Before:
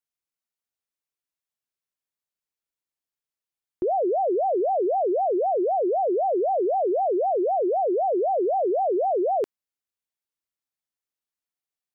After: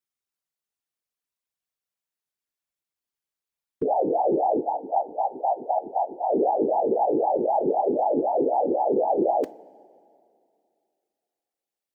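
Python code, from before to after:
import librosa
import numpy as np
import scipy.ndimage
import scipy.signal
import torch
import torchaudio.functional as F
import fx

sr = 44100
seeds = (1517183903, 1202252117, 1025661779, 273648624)

y = fx.spec_box(x, sr, start_s=4.6, length_s=1.66, low_hz=330.0, high_hz=660.0, gain_db=-18)
y = fx.whisperise(y, sr, seeds[0])
y = fx.rev_double_slope(y, sr, seeds[1], early_s=0.27, late_s=2.5, knee_db=-16, drr_db=14.5)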